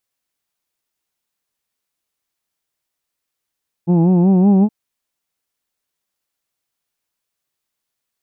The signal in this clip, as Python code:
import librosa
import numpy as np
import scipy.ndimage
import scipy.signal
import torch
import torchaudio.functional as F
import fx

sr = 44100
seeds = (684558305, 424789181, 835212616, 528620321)

y = fx.formant_vowel(sr, seeds[0], length_s=0.82, hz=167.0, glide_st=3.5, vibrato_hz=5.3, vibrato_st=0.9, f1_hz=260.0, f2_hz=830.0, f3_hz=2600.0)